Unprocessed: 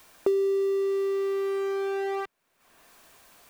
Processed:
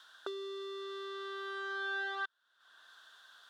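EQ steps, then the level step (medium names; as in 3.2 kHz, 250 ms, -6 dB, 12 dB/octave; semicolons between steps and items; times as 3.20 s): two resonant band-passes 2.3 kHz, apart 1.2 oct; +8.0 dB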